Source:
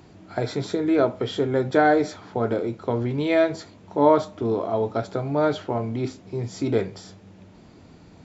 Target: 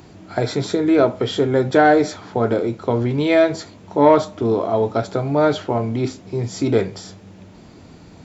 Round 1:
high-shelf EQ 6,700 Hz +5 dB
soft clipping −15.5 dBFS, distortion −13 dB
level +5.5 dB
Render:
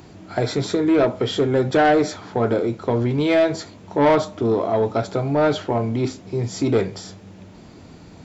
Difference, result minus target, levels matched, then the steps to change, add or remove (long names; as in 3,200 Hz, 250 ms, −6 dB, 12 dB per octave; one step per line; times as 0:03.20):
soft clipping: distortion +12 dB
change: soft clipping −6.5 dBFS, distortion −24 dB